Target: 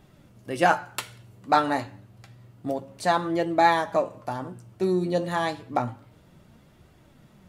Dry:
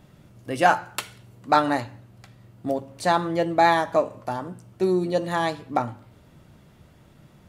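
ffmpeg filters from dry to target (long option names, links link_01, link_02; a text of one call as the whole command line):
ffmpeg -i in.wav -af "flanger=delay=2.4:depth=9.3:regen=60:speed=0.29:shape=triangular,volume=2.5dB" out.wav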